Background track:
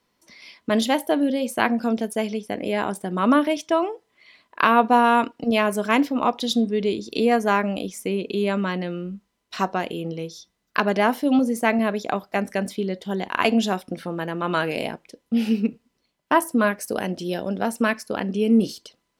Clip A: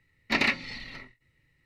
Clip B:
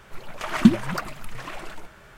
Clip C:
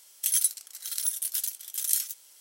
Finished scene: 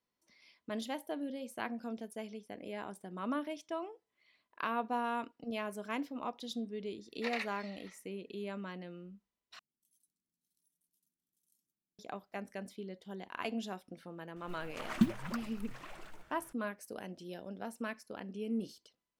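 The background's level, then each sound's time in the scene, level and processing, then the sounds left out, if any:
background track −18.5 dB
0:06.92: mix in A −14.5 dB + Butterworth high-pass 450 Hz
0:09.59: overwrite with C −1.5 dB + inverse Chebyshev low-pass filter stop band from 570 Hz, stop band 50 dB
0:14.36: mix in B −13.5 dB + noise that follows the level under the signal 33 dB

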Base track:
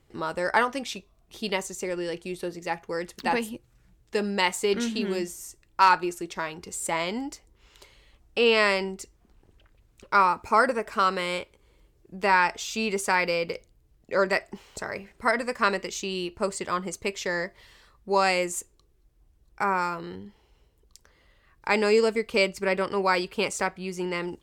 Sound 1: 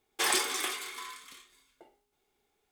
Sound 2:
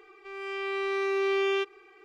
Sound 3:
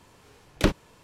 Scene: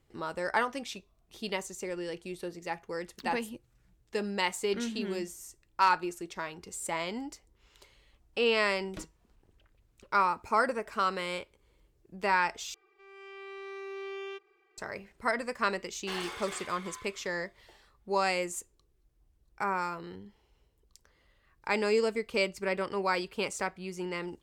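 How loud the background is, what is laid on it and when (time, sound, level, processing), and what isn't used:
base track −6 dB
0:08.33: mix in 3 −16.5 dB + tuned comb filter 160 Hz, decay 0.16 s, mix 70%
0:12.74: overwrite with 2 −13.5 dB
0:15.88: mix in 1 −12.5 dB + mid-hump overdrive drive 18 dB, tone 1,500 Hz, clips at −13.5 dBFS

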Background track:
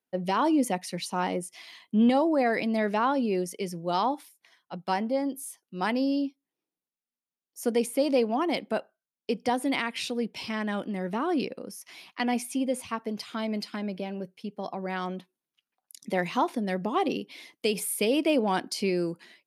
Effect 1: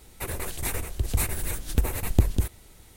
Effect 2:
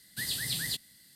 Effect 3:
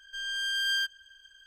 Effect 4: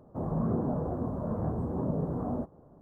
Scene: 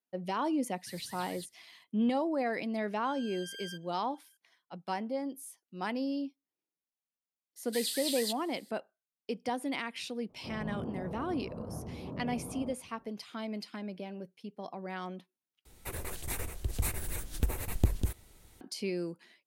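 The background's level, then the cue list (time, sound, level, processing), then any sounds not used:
background track −7.5 dB
0:00.69: mix in 2 −16.5 dB
0:02.91: mix in 3 −16 dB + high-pass filter 1,400 Hz
0:07.56: mix in 2 −1 dB + resonant band-pass 6,300 Hz, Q 0.52
0:10.29: mix in 4 −10 dB
0:15.65: overwrite with 1 −7 dB

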